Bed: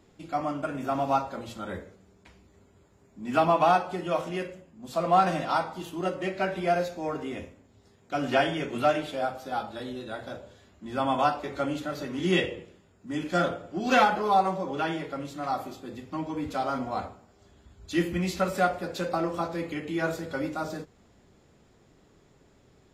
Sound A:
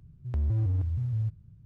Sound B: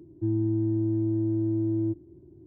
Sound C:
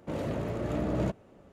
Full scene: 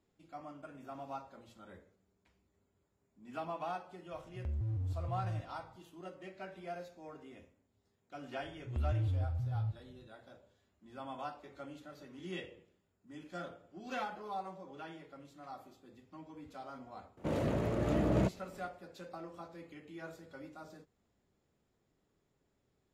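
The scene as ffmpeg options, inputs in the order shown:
ffmpeg -i bed.wav -i cue0.wav -i cue1.wav -i cue2.wav -filter_complex "[1:a]asplit=2[link_01][link_02];[0:a]volume=-18.5dB[link_03];[link_02]aresample=11025,aresample=44100[link_04];[link_01]atrim=end=1.65,asetpts=PTS-STARTPTS,volume=-9.5dB,afade=type=in:duration=0.004:curve=hsin,afade=type=out:start_time=1.646:duration=0.004:curve=hsin,adelay=4110[link_05];[link_04]atrim=end=1.65,asetpts=PTS-STARTPTS,volume=-6.5dB,afade=type=in:duration=0.004:curve=hsin,afade=type=out:start_time=1.646:duration=0.004:curve=hsin,adelay=371322S[link_06];[3:a]atrim=end=1.52,asetpts=PTS-STARTPTS,volume=-0.5dB,afade=type=in:duration=0.004:curve=hsin,afade=type=out:start_time=1.516:duration=0.004:curve=hsin,adelay=17170[link_07];[link_03][link_05][link_06][link_07]amix=inputs=4:normalize=0" out.wav

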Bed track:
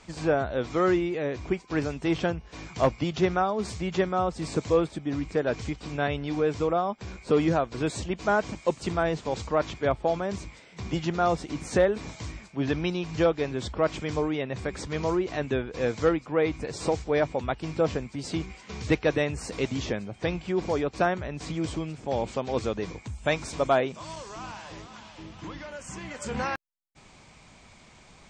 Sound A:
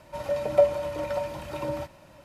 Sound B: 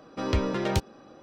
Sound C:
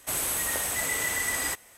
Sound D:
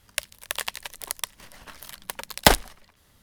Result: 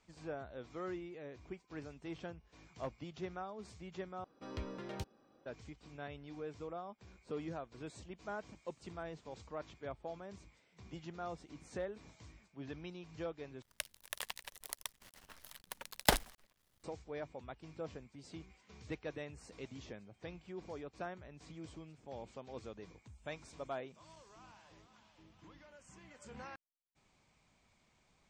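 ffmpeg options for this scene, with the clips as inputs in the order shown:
ffmpeg -i bed.wav -i cue0.wav -i cue1.wav -i cue2.wav -i cue3.wav -filter_complex "[0:a]volume=-19.5dB[link_01];[4:a]acrusher=bits=8:dc=4:mix=0:aa=0.000001[link_02];[link_01]asplit=3[link_03][link_04][link_05];[link_03]atrim=end=4.244[link_06];[2:a]atrim=end=1.22,asetpts=PTS-STARTPTS,volume=-17.5dB[link_07];[link_04]atrim=start=5.456:end=13.624[link_08];[link_02]atrim=end=3.22,asetpts=PTS-STARTPTS,volume=-13dB[link_09];[link_05]atrim=start=16.836[link_10];[link_06][link_07]acrossfade=duration=0.004:curve1=hsin:curve2=hsin[link_11];[link_11][link_08]acrossfade=duration=0.004:curve1=hsin:curve2=hsin[link_12];[link_12][link_09]acrossfade=duration=0.004:curve1=hsin:curve2=hsin[link_13];[link_13][link_10]acrossfade=duration=0.004:curve1=hsin:curve2=hsin" out.wav

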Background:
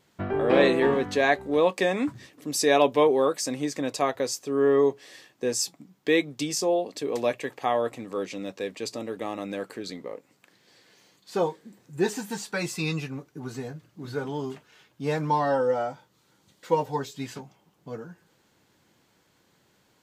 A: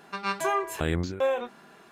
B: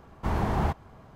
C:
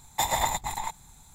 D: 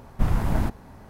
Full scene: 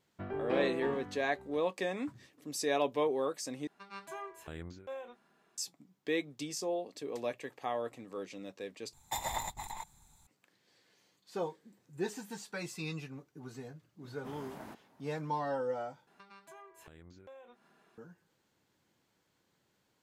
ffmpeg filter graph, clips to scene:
ffmpeg -i bed.wav -i cue0.wav -i cue1.wav -i cue2.wav -i cue3.wav -filter_complex "[1:a]asplit=2[link_01][link_02];[0:a]volume=-11dB[link_03];[4:a]highpass=280[link_04];[link_02]acompressor=threshold=-33dB:ratio=8:attack=0.88:release=491:knee=1:detection=peak[link_05];[link_03]asplit=4[link_06][link_07][link_08][link_09];[link_06]atrim=end=3.674[link_10];[link_01]atrim=end=1.91,asetpts=PTS-STARTPTS,volume=-17.5dB[link_11];[link_07]atrim=start=5.576:end=8.934[link_12];[3:a]atrim=end=1.34,asetpts=PTS-STARTPTS,volume=-10.5dB[link_13];[link_08]atrim=start=10.266:end=16.074[link_14];[link_05]atrim=end=1.91,asetpts=PTS-STARTPTS,volume=-14.5dB[link_15];[link_09]atrim=start=17.976[link_16];[link_04]atrim=end=1.09,asetpts=PTS-STARTPTS,volume=-16dB,afade=type=in:duration=0.004:curve=hsin,afade=type=out:start_time=1.086:duration=0.004:curve=hsin,adelay=14050[link_17];[link_10][link_11]acrossfade=duration=0.004:curve1=hsin:curve2=hsin[link_18];[link_18][link_12]acrossfade=duration=0.004:curve1=hsin:curve2=hsin[link_19];[link_19][link_13]acrossfade=duration=0.004:curve1=hsin:curve2=hsin[link_20];[link_20][link_14]acrossfade=duration=0.004:curve1=hsin:curve2=hsin[link_21];[link_21][link_15]acrossfade=duration=0.004:curve1=hsin:curve2=hsin[link_22];[link_22][link_16]acrossfade=duration=0.004:curve1=hsin:curve2=hsin[link_23];[link_23][link_17]amix=inputs=2:normalize=0" out.wav

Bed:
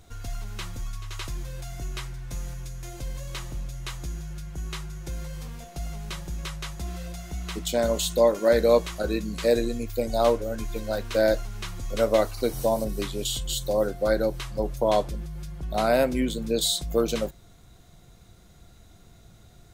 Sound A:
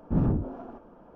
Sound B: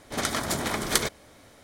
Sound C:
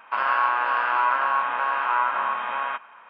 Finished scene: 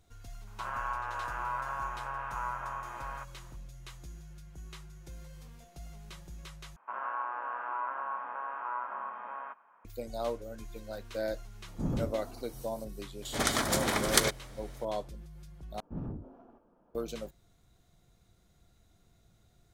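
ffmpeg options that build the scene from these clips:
ffmpeg -i bed.wav -i cue0.wav -i cue1.wav -i cue2.wav -filter_complex "[3:a]asplit=2[link_01][link_02];[1:a]asplit=2[link_03][link_04];[0:a]volume=-13dB[link_05];[link_01]lowpass=frequency=1300:poles=1[link_06];[link_02]lowpass=1200[link_07];[link_05]asplit=3[link_08][link_09][link_10];[link_08]atrim=end=6.764[link_11];[link_07]atrim=end=3.09,asetpts=PTS-STARTPTS,volume=-11.5dB[link_12];[link_09]atrim=start=9.846:end=15.804[link_13];[link_04]atrim=end=1.15,asetpts=PTS-STARTPTS,volume=-14.5dB[link_14];[link_10]atrim=start=16.946[link_15];[link_06]atrim=end=3.09,asetpts=PTS-STARTPTS,volume=-11.5dB,afade=type=in:duration=0.004:curve=hsin,afade=type=out:start_time=3.086:duration=0.004:curve=hsin,adelay=470[link_16];[link_03]atrim=end=1.15,asetpts=PTS-STARTPTS,volume=-8.5dB,afade=type=in:duration=0.004:curve=hsin,afade=type=out:start_time=1.146:duration=0.004:curve=hsin,adelay=11680[link_17];[2:a]atrim=end=1.63,asetpts=PTS-STARTPTS,volume=-1dB,afade=type=in:duration=0.004:curve=hsin,afade=type=out:start_time=1.626:duration=0.004:curve=hsin,adelay=13220[link_18];[link_11][link_12]acrossfade=duration=0.004:curve1=hsin:curve2=hsin[link_19];[link_19][link_13]acrossfade=duration=0.004:curve1=hsin:curve2=hsin[link_20];[link_20][link_14]acrossfade=duration=0.004:curve1=hsin:curve2=hsin[link_21];[link_21][link_15]acrossfade=duration=0.004:curve1=hsin:curve2=hsin[link_22];[link_22][link_16][link_17][link_18]amix=inputs=4:normalize=0" out.wav

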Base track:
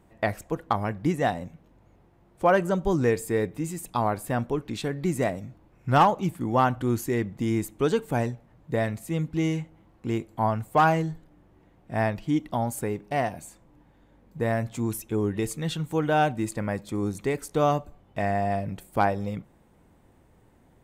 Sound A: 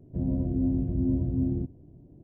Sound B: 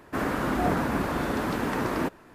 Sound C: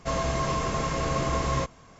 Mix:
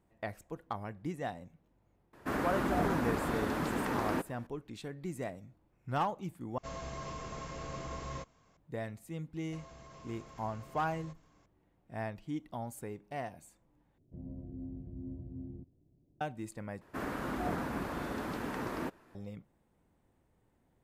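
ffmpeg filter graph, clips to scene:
ffmpeg -i bed.wav -i cue0.wav -i cue1.wav -i cue2.wav -filter_complex "[2:a]asplit=2[link_01][link_02];[3:a]asplit=2[link_03][link_04];[0:a]volume=-13.5dB[link_05];[link_04]acompressor=threshold=-34dB:ratio=6:attack=3.2:release=140:knee=1:detection=peak[link_06];[link_05]asplit=4[link_07][link_08][link_09][link_10];[link_07]atrim=end=6.584[link_11];[link_03]atrim=end=1.99,asetpts=PTS-STARTPTS,volume=-15dB[link_12];[link_08]atrim=start=8.566:end=13.984[link_13];[1:a]atrim=end=2.23,asetpts=PTS-STARTPTS,volume=-17.5dB[link_14];[link_09]atrim=start=16.206:end=16.814[link_15];[link_02]atrim=end=2.34,asetpts=PTS-STARTPTS,volume=-10dB[link_16];[link_10]atrim=start=19.146[link_17];[link_01]atrim=end=2.34,asetpts=PTS-STARTPTS,volume=-6dB,afade=type=in:duration=0.004:curve=hsin,afade=type=out:start_time=2.336:duration=0.004:curve=hsin,adelay=2130[link_18];[link_06]atrim=end=1.99,asetpts=PTS-STARTPTS,volume=-16dB,afade=type=in:duration=0.004:curve=hsin,afade=type=out:start_time=1.986:duration=0.004:curve=hsin,adelay=9470[link_19];[link_11][link_12]acrossfade=duration=0.004:curve1=hsin:curve2=hsin[link_20];[link_20][link_13]acrossfade=duration=0.004:curve1=hsin:curve2=hsin[link_21];[link_21][link_14]acrossfade=duration=0.004:curve1=hsin:curve2=hsin[link_22];[link_22][link_15]acrossfade=duration=0.004:curve1=hsin:curve2=hsin[link_23];[link_23][link_16]acrossfade=duration=0.004:curve1=hsin:curve2=hsin[link_24];[link_24][link_17]acrossfade=duration=0.004:curve1=hsin:curve2=hsin[link_25];[link_25][link_18][link_19]amix=inputs=3:normalize=0" out.wav

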